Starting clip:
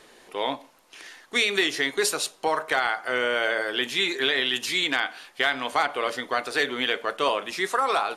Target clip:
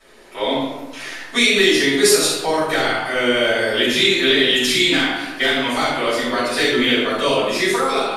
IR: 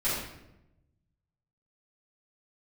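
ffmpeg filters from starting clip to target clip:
-filter_complex "[0:a]dynaudnorm=f=120:g=7:m=3.55[s0];[1:a]atrim=start_sample=2205[s1];[s0][s1]afir=irnorm=-1:irlink=0,acrossover=split=430|3000[s2][s3][s4];[s3]acompressor=threshold=0.0794:ratio=2.5[s5];[s2][s5][s4]amix=inputs=3:normalize=0,volume=0.596"

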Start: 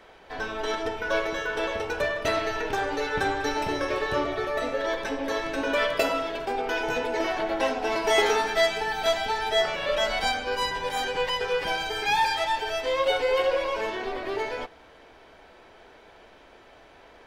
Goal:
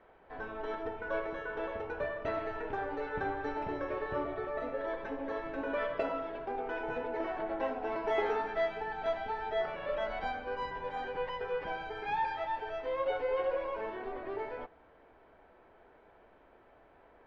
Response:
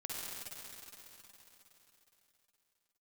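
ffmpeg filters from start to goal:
-af "lowpass=1600,volume=0.398"

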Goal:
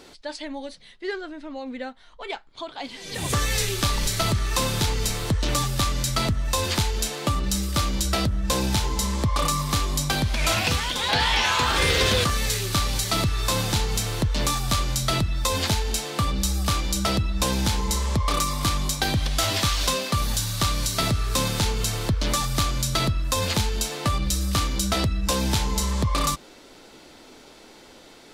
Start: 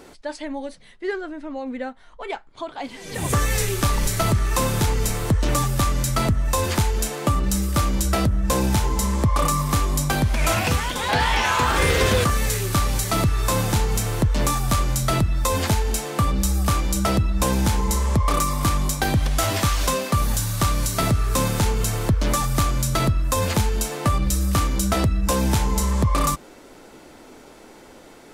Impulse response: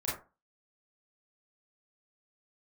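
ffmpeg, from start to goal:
-af "equalizer=f=4000:w=1:g=9.5,volume=0.631"

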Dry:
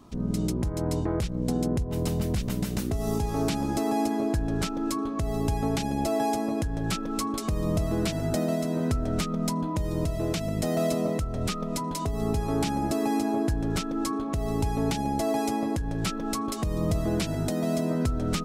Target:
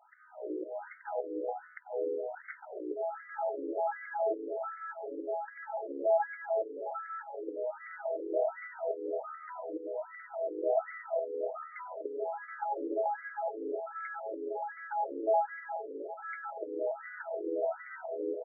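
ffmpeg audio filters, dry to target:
-filter_complex "[0:a]equalizer=f=220:t=o:w=1.7:g=-14,asplit=2[s0][s1];[s1]alimiter=limit=0.0631:level=0:latency=1,volume=0.794[s2];[s0][s2]amix=inputs=2:normalize=0,asuperstop=centerf=1100:order=4:qfactor=2.2,aecho=1:1:380:0.299,afftfilt=real='re*between(b*sr/1024,380*pow(1600/380,0.5+0.5*sin(2*PI*1.3*pts/sr))/1.41,380*pow(1600/380,0.5+0.5*sin(2*PI*1.3*pts/sr))*1.41)':imag='im*between(b*sr/1024,380*pow(1600/380,0.5+0.5*sin(2*PI*1.3*pts/sr))/1.41,380*pow(1600/380,0.5+0.5*sin(2*PI*1.3*pts/sr))*1.41)':win_size=1024:overlap=0.75,volume=1.19"

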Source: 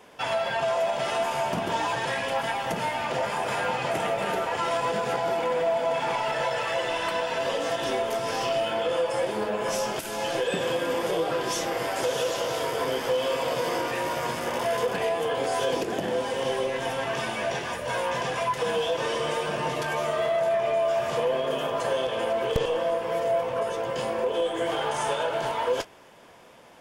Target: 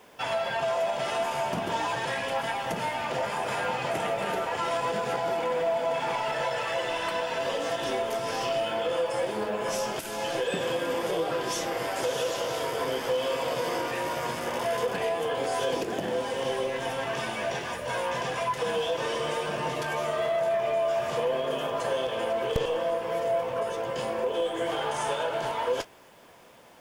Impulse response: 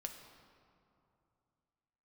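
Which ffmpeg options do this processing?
-af "acrusher=bits=9:mix=0:aa=0.000001,volume=0.794"

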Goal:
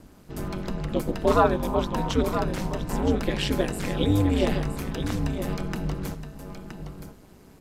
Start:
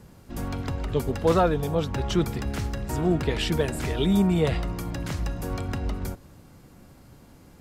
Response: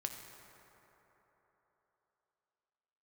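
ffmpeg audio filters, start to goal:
-filter_complex "[0:a]aeval=exprs='val(0)*sin(2*PI*99*n/s)':c=same,asettb=1/sr,asplit=3[s0][s1][s2];[s0]atrim=end=1.314[s3];[s1]atrim=start=1.31:end=2.13,asetpts=PTS-STARTPTS,afade=t=in:d=0.004:c=qsin,afade=t=out:st=0.816:d=0.004:c=qsin,equalizer=f=990:t=o:w=0.49:g=9.5[s4];[s2]atrim=start=2.126[s5];[s3][s4]acrossfade=d=0.004:c1=hsin:c2=qsin[s6];[s6][s5]acrossfade=d=0.004:c1=qsin:c2=hsin,aecho=1:1:970:0.355,volume=1.33"

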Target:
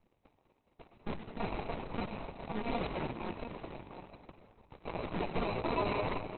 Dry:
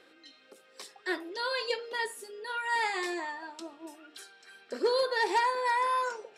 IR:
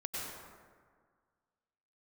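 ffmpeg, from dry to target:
-filter_complex "[0:a]highpass=f=1300:t=q:w=1.6,acrusher=samples=27:mix=1:aa=0.000001,aeval=exprs='0.133*(cos(1*acos(clip(val(0)/0.133,-1,1)))-cos(1*PI/2))+0.0299*(cos(2*acos(clip(val(0)/0.133,-1,1)))-cos(2*PI/2))+0.00119*(cos(6*acos(clip(val(0)/0.133,-1,1)))-cos(6*PI/2))+0.00473*(cos(7*acos(clip(val(0)/0.133,-1,1)))-cos(7*PI/2))+0.0422*(cos(8*acos(clip(val(0)/0.133,-1,1)))-cos(8*PI/2))':c=same,aeval=exprs='abs(val(0))':c=same,aecho=1:1:700:0.473,asplit=2[s0][s1];[1:a]atrim=start_sample=2205[s2];[s1][s2]afir=irnorm=-1:irlink=0,volume=0.501[s3];[s0][s3]amix=inputs=2:normalize=0,volume=0.398" -ar 48000 -c:a libopus -b:a 6k

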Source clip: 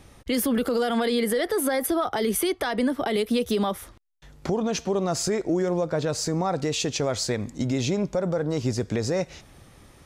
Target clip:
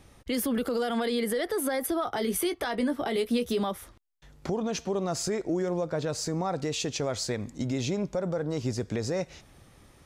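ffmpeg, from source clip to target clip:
-filter_complex "[0:a]asettb=1/sr,asplit=3[s0][s1][s2];[s0]atrim=end=2.054[s3];[s1]atrim=start=2.05:end=3.61,asetpts=PTS-STARTPTS,afade=t=in:d=0.004:c=qsin,afade=t=out:st=1.556:d=0.004:c=qsin,asplit=2[s4][s5];[s5]adelay=17,volume=0.355[s6];[s4][s6]amix=inputs=2:normalize=0,atrim=end_sample=68796[s7];[s2]atrim=start=3.606[s8];[s3][s7]acrossfade=d=0.004:c1=hsin:c2=qsin[s9];[s9][s8]acrossfade=d=0.004:c1=qsin:c2=hsin,volume=0.596"

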